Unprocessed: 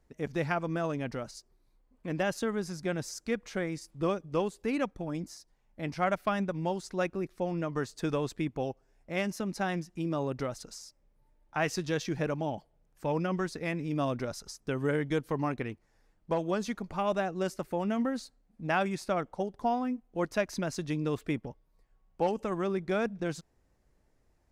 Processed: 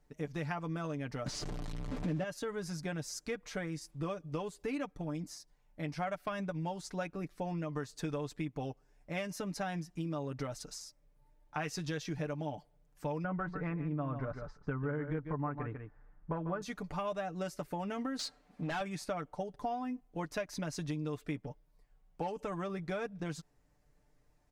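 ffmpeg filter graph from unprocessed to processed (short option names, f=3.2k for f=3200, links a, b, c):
-filter_complex "[0:a]asettb=1/sr,asplit=3[a][b][c];[a]atrim=end=1.264[d];[b]atrim=start=1.26:end=2.24,asetpts=PTS-STARTPTS,afade=t=in:d=0.004:c=qsin,afade=t=out:st=0.976:d=0.004:c=qsin,aeval=exprs='val(0)+0.5*0.0178*sgn(val(0))':c=same,lowpass=6.6k,equalizer=f=200:w=0.4:g=9.5[e];[c]atrim=start=2.236[f];[d][e]acrossfade=d=0.004:c1=hsin:c2=qsin[g];[g][f]acrossfade=d=0.004:c1=qsin:c2=hsin,asettb=1/sr,asplit=3[h][i][j];[h]atrim=end=13.244[k];[i]atrim=start=13.24:end=16.62,asetpts=PTS-STARTPTS,afade=t=in:d=0.004:c=qsin,afade=t=out:st=3.376:d=0.004:c=qsin,lowpass=f=1.4k:t=q:w=1.9,lowshelf=f=140:g=9,aecho=1:1:145:0.299,atrim=end_sample=149058[l];[j]atrim=start=16.616[m];[k][l]acrossfade=d=0.004:c1=hsin:c2=qsin[n];[n][m]acrossfade=d=0.004:c1=qsin:c2=hsin,asettb=1/sr,asplit=3[o][p][q];[o]atrim=end=18.194[r];[p]atrim=start=18.19:end=18.81,asetpts=PTS-STARTPTS,afade=t=in:d=0.004:c=qsin,afade=t=out:st=0.616:d=0.004:c=qsin,highshelf=f=6.9k:g=-9,acompressor=threshold=-35dB:ratio=5:attack=3.2:release=140:knee=1:detection=peak,asplit=2[s][t];[t]highpass=f=720:p=1,volume=24dB,asoftclip=type=tanh:threshold=-22dB[u];[s][u]amix=inputs=2:normalize=0,lowpass=f=5.3k:p=1,volume=-6dB[v];[q]atrim=start=18.806[w];[r][v]acrossfade=d=0.004:c1=hsin:c2=qsin[x];[x][w]acrossfade=d=0.004:c1=qsin:c2=hsin,equalizer=f=370:t=o:w=0.77:g=-2.5,aecho=1:1:6.8:0.6,acompressor=threshold=-33dB:ratio=4,volume=-1.5dB"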